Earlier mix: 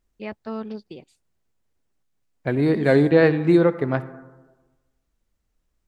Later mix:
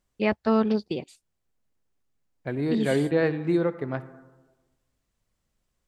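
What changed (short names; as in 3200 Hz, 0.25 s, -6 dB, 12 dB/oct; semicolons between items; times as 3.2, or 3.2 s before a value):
first voice +9.5 dB; second voice -7.5 dB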